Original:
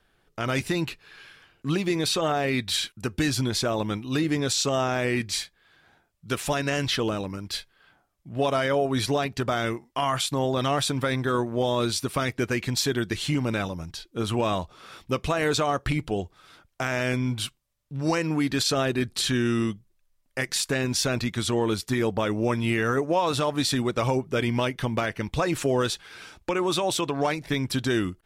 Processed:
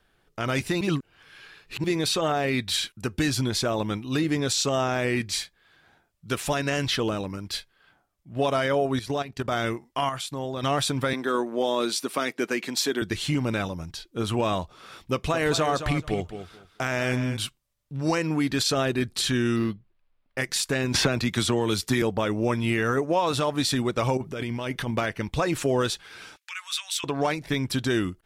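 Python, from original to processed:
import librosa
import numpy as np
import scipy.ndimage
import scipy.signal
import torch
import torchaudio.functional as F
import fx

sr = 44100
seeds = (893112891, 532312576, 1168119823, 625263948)

y = fx.transient(x, sr, attack_db=-6, sustain_db=-2, at=(7.58, 8.35), fade=0.02)
y = fx.level_steps(y, sr, step_db=13, at=(8.96, 9.52))
y = fx.highpass(y, sr, hz=220.0, slope=24, at=(11.13, 13.02))
y = fx.echo_feedback(y, sr, ms=216, feedback_pct=18, wet_db=-10.0, at=(15.12, 17.37))
y = fx.resample_linear(y, sr, factor=6, at=(19.56, 20.38))
y = fx.band_squash(y, sr, depth_pct=100, at=(20.94, 22.02))
y = fx.over_compress(y, sr, threshold_db=-30.0, ratio=-1.0, at=(24.17, 24.91))
y = fx.cheby2_highpass(y, sr, hz=360.0, order=4, stop_db=70, at=(26.36, 27.04))
y = fx.edit(y, sr, fx.reverse_span(start_s=0.81, length_s=1.03),
    fx.clip_gain(start_s=10.09, length_s=0.54, db=-6.5), tone=tone)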